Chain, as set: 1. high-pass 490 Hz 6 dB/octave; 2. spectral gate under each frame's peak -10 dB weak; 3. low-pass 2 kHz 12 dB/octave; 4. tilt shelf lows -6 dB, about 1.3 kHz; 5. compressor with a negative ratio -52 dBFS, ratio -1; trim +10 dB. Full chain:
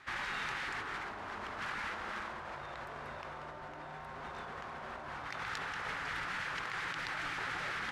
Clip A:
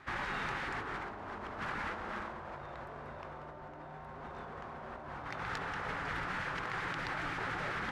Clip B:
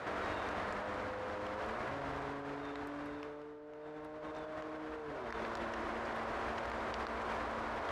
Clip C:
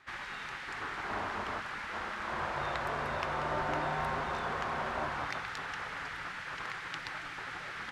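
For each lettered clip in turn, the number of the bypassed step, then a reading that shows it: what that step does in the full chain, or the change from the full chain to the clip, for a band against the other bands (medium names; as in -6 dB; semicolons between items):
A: 4, crest factor change -2.5 dB; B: 2, 500 Hz band +11.0 dB; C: 5, 8 kHz band -5.0 dB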